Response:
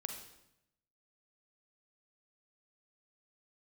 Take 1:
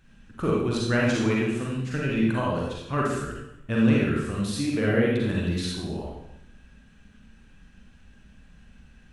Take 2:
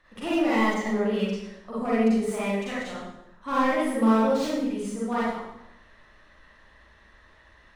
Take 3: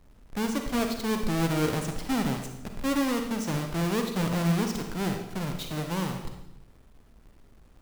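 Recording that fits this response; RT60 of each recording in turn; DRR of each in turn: 3; 0.85 s, 0.85 s, 0.85 s; -4.5 dB, -9.0 dB, 4.0 dB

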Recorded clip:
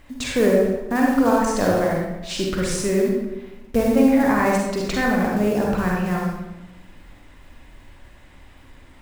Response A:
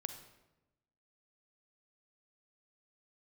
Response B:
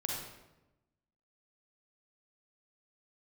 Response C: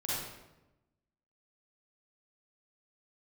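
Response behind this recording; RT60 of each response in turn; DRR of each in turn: B; 1.0 s, 1.0 s, 1.0 s; 7.5 dB, -2.0 dB, -8.5 dB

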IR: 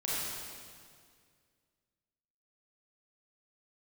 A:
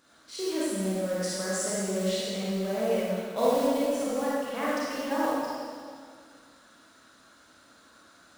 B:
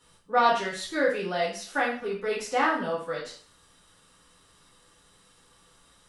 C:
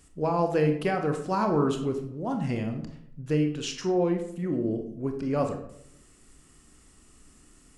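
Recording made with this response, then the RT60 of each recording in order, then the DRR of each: A; 2.0 s, 0.45 s, 0.70 s; -8.5 dB, -8.0 dB, 4.5 dB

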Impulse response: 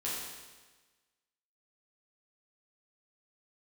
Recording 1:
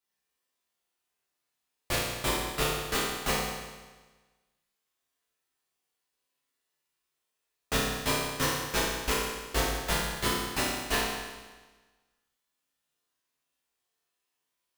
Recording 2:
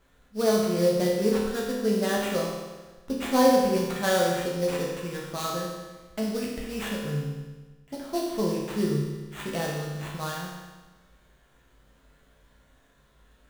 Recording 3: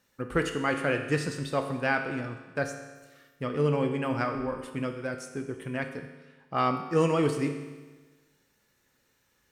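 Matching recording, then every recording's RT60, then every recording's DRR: 1; 1.3 s, 1.3 s, 1.3 s; -8.0 dB, -4.0 dB, 5.0 dB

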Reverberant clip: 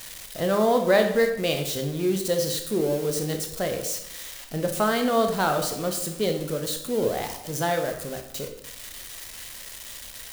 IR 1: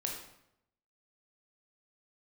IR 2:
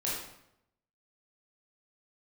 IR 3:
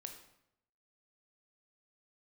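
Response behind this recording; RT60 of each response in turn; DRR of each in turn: 3; 0.80 s, 0.80 s, 0.80 s; 0.0 dB, -6.5 dB, 4.5 dB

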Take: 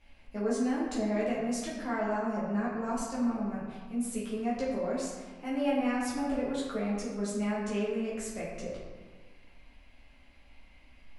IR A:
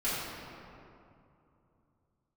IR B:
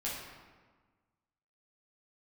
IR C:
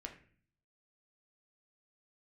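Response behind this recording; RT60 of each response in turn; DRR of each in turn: B; 2.7 s, 1.4 s, 0.45 s; -12.5 dB, -8.0 dB, 2.0 dB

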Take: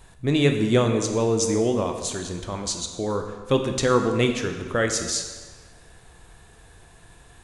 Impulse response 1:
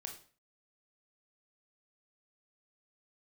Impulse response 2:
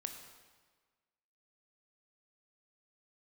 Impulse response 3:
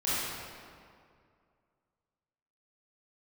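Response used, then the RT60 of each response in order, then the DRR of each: 2; 0.40 s, 1.5 s, 2.2 s; 2.5 dB, 5.0 dB, -11.5 dB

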